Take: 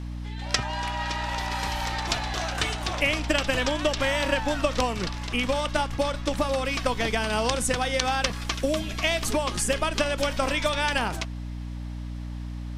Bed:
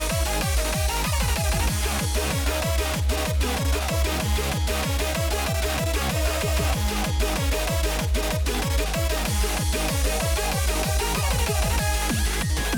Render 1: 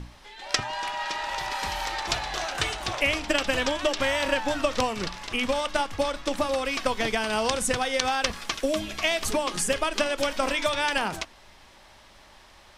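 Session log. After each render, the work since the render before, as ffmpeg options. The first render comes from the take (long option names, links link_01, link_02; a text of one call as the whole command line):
ffmpeg -i in.wav -af "bandreject=frequency=60:width_type=h:width=6,bandreject=frequency=120:width_type=h:width=6,bandreject=frequency=180:width_type=h:width=6,bandreject=frequency=240:width_type=h:width=6,bandreject=frequency=300:width_type=h:width=6" out.wav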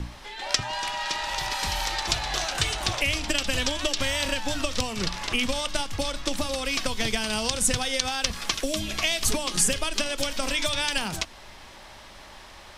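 ffmpeg -i in.wav -filter_complex "[0:a]asplit=2[link_01][link_02];[link_02]alimiter=limit=-12.5dB:level=0:latency=1:release=260,volume=1dB[link_03];[link_01][link_03]amix=inputs=2:normalize=0,acrossover=split=190|3000[link_04][link_05][link_06];[link_05]acompressor=threshold=-30dB:ratio=6[link_07];[link_04][link_07][link_06]amix=inputs=3:normalize=0" out.wav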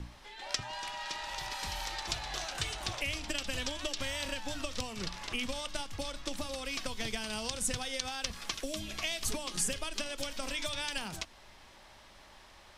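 ffmpeg -i in.wav -af "volume=-10dB" out.wav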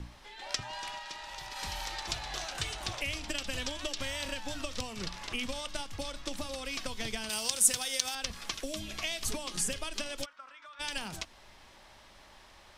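ffmpeg -i in.wav -filter_complex "[0:a]asettb=1/sr,asplit=3[link_01][link_02][link_03];[link_01]atrim=end=7.294[link_04];[link_02]atrim=start=7.29:end=8.15,asetpts=PTS-STARTPTS,afade=type=in:duration=0.004:curve=qsin,afade=type=out:start_time=0.856:duration=0.004:curve=qsin,aemphasis=mode=production:type=bsi[link_05];[link_03]atrim=start=8.146[link_06];[link_04][link_05]acrossfade=duration=0.004:curve1=hsin:curve2=qsin[link_07];[link_07][link_06]acrossfade=duration=0.004:curve1=qsin:curve2=hsin,asplit=3[link_08][link_09][link_10];[link_08]afade=type=out:start_time=10.24:duration=0.02[link_11];[link_09]bandpass=frequency=1300:width_type=q:width=5.1,afade=type=in:start_time=10.24:duration=0.02,afade=type=out:start_time=10.79:duration=0.02[link_12];[link_10]afade=type=in:start_time=10.79:duration=0.02[link_13];[link_11][link_12][link_13]amix=inputs=3:normalize=0,asplit=3[link_14][link_15][link_16];[link_14]atrim=end=0.992[link_17];[link_15]atrim=start=0.988:end=1.562,asetpts=PTS-STARTPTS,volume=-4dB[link_18];[link_16]atrim=start=1.558[link_19];[link_17][link_18]acrossfade=duration=0.004:curve1=hsin:curve2=hsin[link_20];[link_20][link_19]acrossfade=duration=0.004:curve1=hsin:curve2=hsin" out.wav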